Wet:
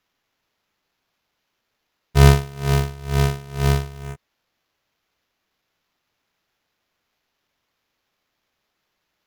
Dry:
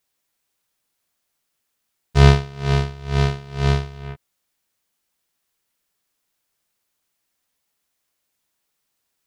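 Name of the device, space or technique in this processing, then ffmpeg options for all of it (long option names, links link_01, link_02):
crushed at another speed: -af "asetrate=22050,aresample=44100,acrusher=samples=10:mix=1:aa=0.000001,asetrate=88200,aresample=44100"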